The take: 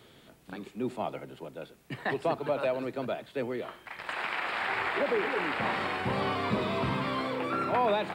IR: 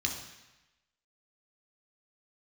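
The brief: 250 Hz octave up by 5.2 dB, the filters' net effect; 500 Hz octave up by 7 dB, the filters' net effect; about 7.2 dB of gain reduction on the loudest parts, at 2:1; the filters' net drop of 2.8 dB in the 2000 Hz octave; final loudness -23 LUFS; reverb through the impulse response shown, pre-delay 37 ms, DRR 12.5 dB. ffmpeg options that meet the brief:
-filter_complex "[0:a]equalizer=f=250:t=o:g=4,equalizer=f=500:t=o:g=8,equalizer=f=2k:t=o:g=-4,acompressor=threshold=-31dB:ratio=2,asplit=2[a][b];[1:a]atrim=start_sample=2205,adelay=37[c];[b][c]afir=irnorm=-1:irlink=0,volume=-17.5dB[d];[a][d]amix=inputs=2:normalize=0,volume=9.5dB"

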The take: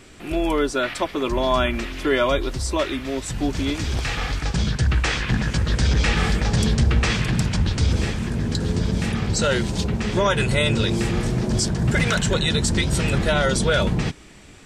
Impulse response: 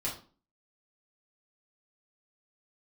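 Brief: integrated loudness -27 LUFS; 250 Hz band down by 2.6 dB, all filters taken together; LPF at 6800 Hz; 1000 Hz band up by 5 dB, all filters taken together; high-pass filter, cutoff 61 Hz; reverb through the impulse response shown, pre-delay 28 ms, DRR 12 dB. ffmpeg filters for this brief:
-filter_complex "[0:a]highpass=61,lowpass=6.8k,equalizer=f=250:t=o:g=-4,equalizer=f=1k:t=o:g=6.5,asplit=2[a][b];[1:a]atrim=start_sample=2205,adelay=28[c];[b][c]afir=irnorm=-1:irlink=0,volume=-16dB[d];[a][d]amix=inputs=2:normalize=0,volume=-5.5dB"

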